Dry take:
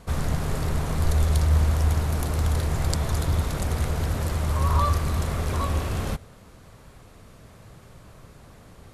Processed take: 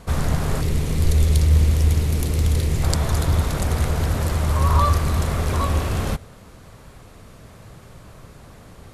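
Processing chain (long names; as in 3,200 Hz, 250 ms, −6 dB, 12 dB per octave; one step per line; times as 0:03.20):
0:00.61–0:02.83: flat-topped bell 1,000 Hz −9.5 dB
level +4.5 dB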